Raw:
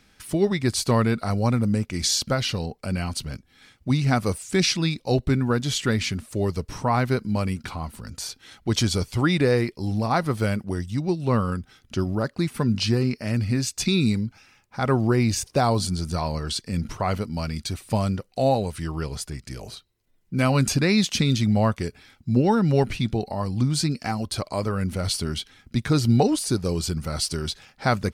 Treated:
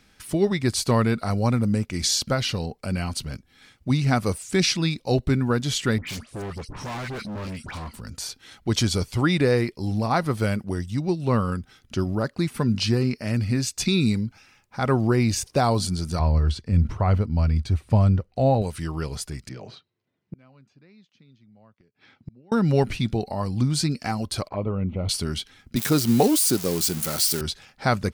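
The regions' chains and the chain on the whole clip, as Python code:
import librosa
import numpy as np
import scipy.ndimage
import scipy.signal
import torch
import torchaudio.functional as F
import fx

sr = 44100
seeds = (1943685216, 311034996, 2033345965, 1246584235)

y = fx.chain(x, sr, fx.lowpass(hz=10000.0, slope=24),
    fx.dispersion(late='highs', ms=90.0, hz=2000.0),
    fx.clip_hard(threshold_db=-30.5), at=(5.98, 7.94))
y = fx.chain(y, sr, fx.lowpass(hz=1700.0, slope=6),
    fx.peak_eq(hz=74.0, db=13.5, octaves=1.2), at=(16.19, 18.62))
y = fx.chain(y, sr, fx.highpass(hz=110.0, slope=24),
    fx.air_absorb(metres=190.0),
    fx.gate_flip(shuts_db=-25.0, range_db=-33), at=(19.49, 22.52))
y = fx.chain(y, sr, fx.lowpass(hz=2600.0, slope=24),
    fx.env_flanger(rest_ms=4.2, full_db=-23.5), at=(24.48, 25.09))
y = fx.chain(y, sr, fx.crossing_spikes(level_db=-18.0),
    fx.highpass(hz=200.0, slope=12),
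    fx.low_shelf(hz=410.0, db=4.0), at=(25.76, 27.41))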